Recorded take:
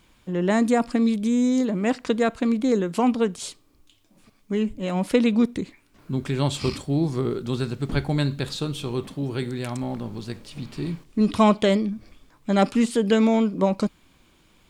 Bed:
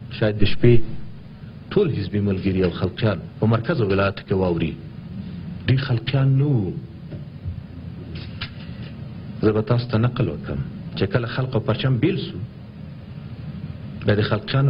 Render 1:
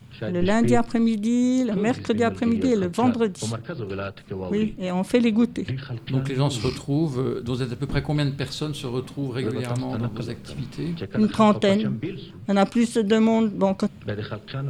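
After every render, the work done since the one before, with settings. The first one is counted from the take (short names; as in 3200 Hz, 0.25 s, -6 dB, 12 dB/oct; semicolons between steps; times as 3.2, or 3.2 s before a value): add bed -11 dB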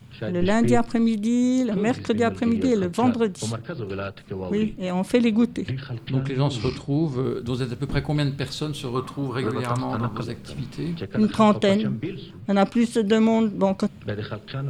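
6.09–7.24 air absorption 72 m; 8.95–10.24 bell 1100 Hz +13.5 dB 0.66 oct; 12.4–12.93 bell 8900 Hz -5.5 dB 1.5 oct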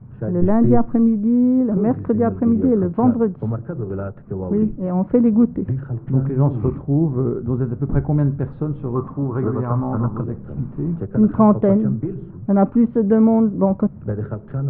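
LPF 1300 Hz 24 dB/oct; low shelf 390 Hz +7.5 dB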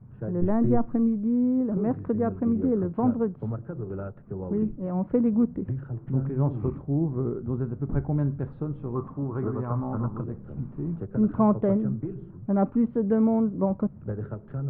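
gain -8 dB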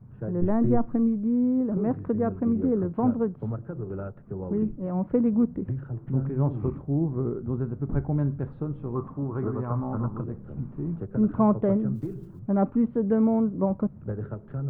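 11.95–12.41 block floating point 7-bit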